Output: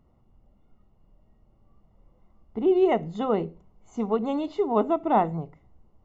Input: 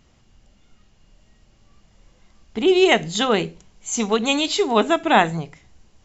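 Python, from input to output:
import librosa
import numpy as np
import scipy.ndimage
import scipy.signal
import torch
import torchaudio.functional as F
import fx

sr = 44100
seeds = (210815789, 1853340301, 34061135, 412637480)

y = scipy.signal.savgol_filter(x, 65, 4, mode='constant')
y = F.gain(torch.from_numpy(y), -4.5).numpy()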